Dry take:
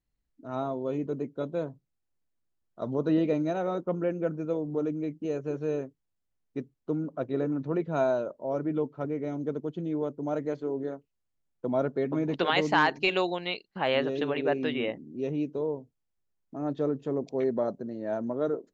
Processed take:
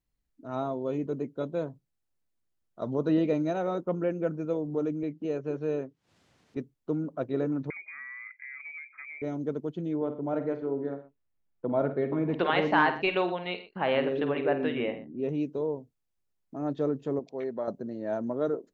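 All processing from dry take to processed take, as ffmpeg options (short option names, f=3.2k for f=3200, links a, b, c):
-filter_complex "[0:a]asettb=1/sr,asplit=3[a][b][c];[a]atrim=end=5.034[d];[b]atrim=start=5.03:end=6.57,asetpts=PTS-STARTPTS,afade=t=in:d=0.004:c=qsin,afade=t=out:st=1.536:d=0.004:c=qsin,highpass=110,lowpass=5.1k,acompressor=mode=upward:threshold=-42dB:ratio=2.5:attack=3.2:release=140:knee=2.83:detection=peak[e];[c]atrim=start=6.566[f];[d][e]acrossfade=d=0.004:c1=hsin:c2=qsin[g];[g][f]acrossfade=d=0.004:c1=qsin:c2=hsin,asettb=1/sr,asplit=3[h][i][j];[h]atrim=end=7.704[k];[i]atrim=start=7.7:end=9.22,asetpts=PTS-STARTPTS,afade=t=in:d=0.004:c=qsin,afade=t=out:st=1.516:d=0.004:c=qsin,highpass=170,acompressor=threshold=-39dB:ratio=10:attack=3.2:release=140:knee=1:detection=peak,lowpass=f=2.2k:t=q:w=0.5098,lowpass=f=2.2k:t=q:w=0.6013,lowpass=f=2.2k:t=q:w=0.9,lowpass=f=2.2k:t=q:w=2.563,afreqshift=-2600[l];[j]atrim=start=9.216[m];[k][l]acrossfade=d=0.004:c1=hsin:c2=qsin[n];[n][m]acrossfade=d=0.004:c1=qsin:c2=hsin,asettb=1/sr,asplit=3[o][p][q];[o]atrim=end=9.964[r];[p]atrim=start=9.96:end=15.29,asetpts=PTS-STARTPTS,afade=t=in:d=0.004:c=qsin,afade=t=out:st=5.326:d=0.004:c=qsin,lowpass=2.6k,aecho=1:1:50|84|121:0.299|0.112|0.15,atrim=end_sample=235053[s];[q]atrim=start=15.286[t];[r][s]acrossfade=d=0.004:c1=hsin:c2=qsin[u];[u][t]acrossfade=d=0.004:c1=qsin:c2=hsin,asettb=1/sr,asplit=3[v][w][x];[v]atrim=end=17.194[y];[w]atrim=start=17.19:end=17.68,asetpts=PTS-STARTPTS,afade=t=in:d=0.004:c=qsin,afade=t=out:st=0.486:d=0.004:c=qsin,highpass=f=990:p=1,aemphasis=mode=reproduction:type=bsi[z];[x]atrim=start=17.676[aa];[y][z]acrossfade=d=0.004:c1=hsin:c2=qsin[ab];[ab][aa]acrossfade=d=0.004:c1=qsin:c2=hsin"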